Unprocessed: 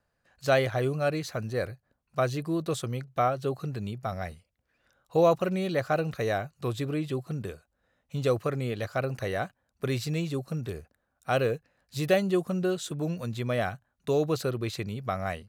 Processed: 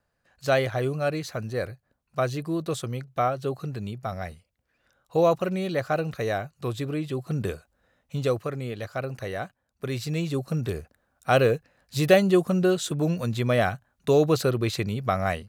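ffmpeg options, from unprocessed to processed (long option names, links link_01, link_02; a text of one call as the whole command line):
ffmpeg -i in.wav -af "volume=15.5dB,afade=type=in:start_time=7.15:duration=0.36:silence=0.446684,afade=type=out:start_time=7.51:duration=0.93:silence=0.334965,afade=type=in:start_time=9.89:duration=0.77:silence=0.421697" out.wav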